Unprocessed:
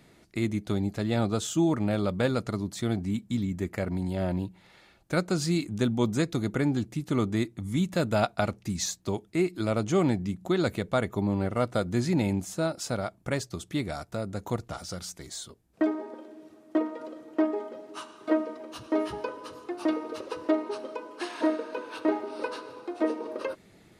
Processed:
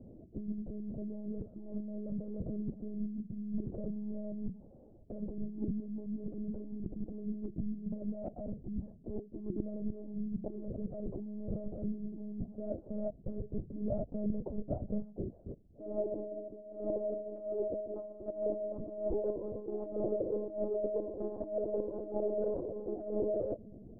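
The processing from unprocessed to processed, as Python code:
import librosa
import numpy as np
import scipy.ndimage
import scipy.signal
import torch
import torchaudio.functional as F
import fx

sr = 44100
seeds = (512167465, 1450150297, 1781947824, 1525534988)

y = scipy.signal.sosfilt(scipy.signal.ellip(4, 1.0, 80, 610.0, 'lowpass', fs=sr, output='sos'), x)
y = fx.low_shelf(y, sr, hz=150.0, db=4.0)
y = fx.over_compress(y, sr, threshold_db=-36.0, ratio=-1.0)
y = fx.lpc_monotone(y, sr, seeds[0], pitch_hz=210.0, order=16)
y = y * 10.0 ** (-1.5 / 20.0)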